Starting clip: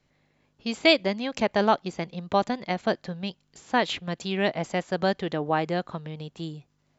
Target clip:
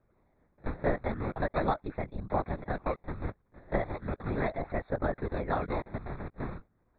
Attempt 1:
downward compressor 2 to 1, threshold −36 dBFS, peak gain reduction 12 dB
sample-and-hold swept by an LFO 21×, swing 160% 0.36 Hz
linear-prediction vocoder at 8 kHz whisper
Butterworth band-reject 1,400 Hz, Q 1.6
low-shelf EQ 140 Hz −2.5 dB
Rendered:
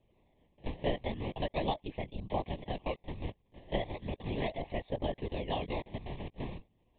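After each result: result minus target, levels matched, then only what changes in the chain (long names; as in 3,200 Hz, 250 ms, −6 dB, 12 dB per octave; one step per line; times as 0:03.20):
4,000 Hz band +15.0 dB; downward compressor: peak gain reduction +3.5 dB
change: Butterworth band-reject 3,000 Hz, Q 1.6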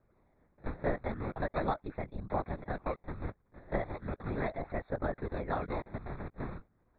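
downward compressor: peak gain reduction +3.5 dB
change: downward compressor 2 to 1, threshold −29 dBFS, peak gain reduction 8.5 dB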